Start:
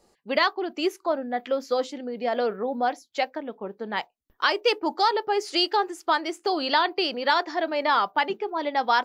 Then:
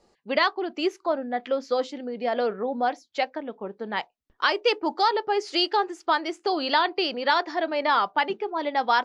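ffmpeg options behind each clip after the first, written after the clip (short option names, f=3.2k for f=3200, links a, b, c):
-af "lowpass=6.1k"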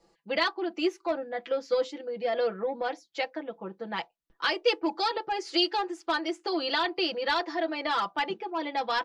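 -filter_complex "[0:a]aecho=1:1:6:0.91,acrossover=split=560|1600[a][b][c];[b]asoftclip=type=tanh:threshold=-24.5dB[d];[a][d][c]amix=inputs=3:normalize=0,volume=-5dB"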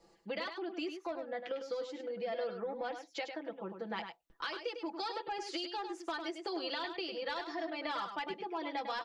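-af "alimiter=limit=-20.5dB:level=0:latency=1:release=451,acompressor=threshold=-40dB:ratio=2.5,aecho=1:1:102:0.422"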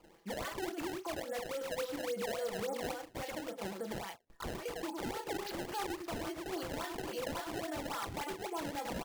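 -filter_complex "[0:a]alimiter=level_in=11.5dB:limit=-24dB:level=0:latency=1:release=151,volume=-11.5dB,asplit=2[a][b];[b]adelay=35,volume=-7.5dB[c];[a][c]amix=inputs=2:normalize=0,acrusher=samples=22:mix=1:aa=0.000001:lfo=1:lforange=35.2:lforate=3.6,volume=4dB"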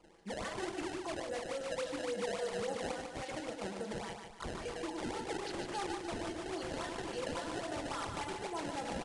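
-af "aecho=1:1:148|296|444|592|740:0.501|0.221|0.097|0.0427|0.0188,aresample=22050,aresample=44100,volume=-1dB"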